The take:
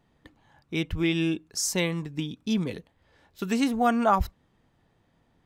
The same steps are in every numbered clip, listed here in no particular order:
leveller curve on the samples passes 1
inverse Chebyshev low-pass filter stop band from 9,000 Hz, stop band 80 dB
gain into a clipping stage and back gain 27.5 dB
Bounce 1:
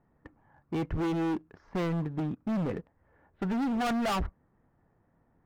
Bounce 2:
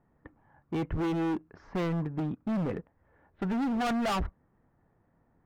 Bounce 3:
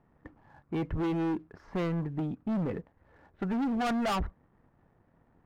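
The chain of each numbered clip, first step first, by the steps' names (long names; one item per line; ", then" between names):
inverse Chebyshev low-pass filter, then leveller curve on the samples, then gain into a clipping stage and back
leveller curve on the samples, then inverse Chebyshev low-pass filter, then gain into a clipping stage and back
inverse Chebyshev low-pass filter, then gain into a clipping stage and back, then leveller curve on the samples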